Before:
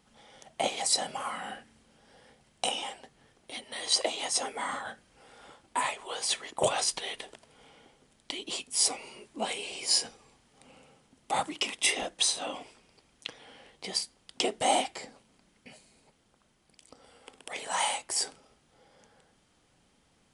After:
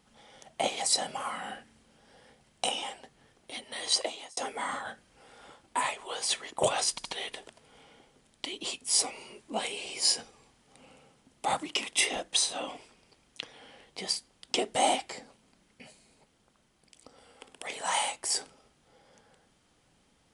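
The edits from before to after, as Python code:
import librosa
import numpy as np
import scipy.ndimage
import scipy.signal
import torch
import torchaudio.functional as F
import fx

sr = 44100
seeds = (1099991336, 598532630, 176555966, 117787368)

y = fx.edit(x, sr, fx.fade_out_span(start_s=3.9, length_s=0.47),
    fx.stutter(start_s=6.91, slice_s=0.07, count=3), tone=tone)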